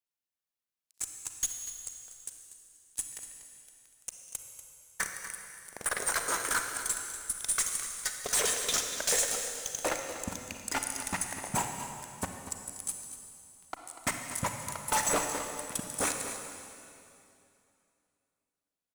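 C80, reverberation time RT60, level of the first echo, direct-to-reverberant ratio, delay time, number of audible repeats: 5.0 dB, 2.6 s, −12.5 dB, 3.5 dB, 241 ms, 1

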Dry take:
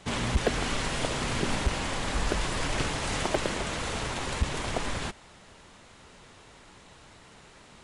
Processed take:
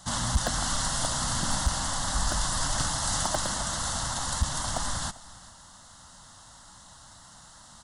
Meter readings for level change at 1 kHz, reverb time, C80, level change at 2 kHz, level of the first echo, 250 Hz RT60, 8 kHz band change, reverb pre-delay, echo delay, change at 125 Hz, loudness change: +2.0 dB, no reverb audible, no reverb audible, −3.0 dB, −20.5 dB, no reverb audible, +9.5 dB, no reverb audible, 395 ms, 0.0 dB, +2.0 dB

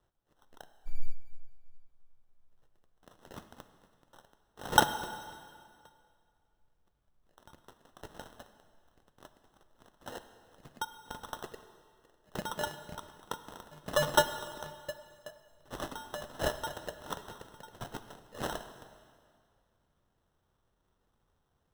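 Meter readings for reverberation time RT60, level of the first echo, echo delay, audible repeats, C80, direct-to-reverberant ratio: 2.1 s, no echo audible, no echo audible, no echo audible, 12.0 dB, 10.0 dB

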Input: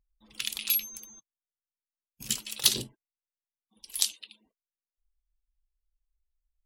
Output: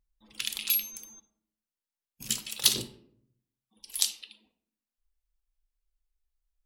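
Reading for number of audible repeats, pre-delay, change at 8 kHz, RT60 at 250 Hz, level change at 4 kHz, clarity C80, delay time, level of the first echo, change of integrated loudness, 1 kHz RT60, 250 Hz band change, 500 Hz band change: no echo audible, 26 ms, 0.0 dB, 0.90 s, 0.0 dB, 16.5 dB, no echo audible, no echo audible, 0.0 dB, 0.65 s, 0.0 dB, 0.0 dB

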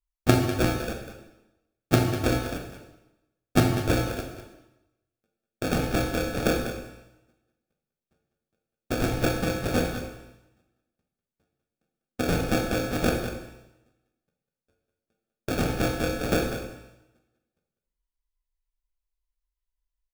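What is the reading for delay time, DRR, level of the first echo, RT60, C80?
197 ms, 2.0 dB, −11.0 dB, 0.90 s, 6.5 dB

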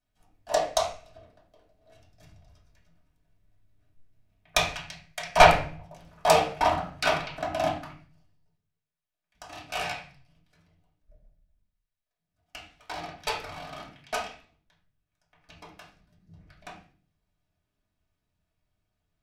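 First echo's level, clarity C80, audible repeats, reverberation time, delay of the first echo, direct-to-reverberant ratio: no echo audible, 10.5 dB, no echo audible, 0.40 s, no echo audible, −7.0 dB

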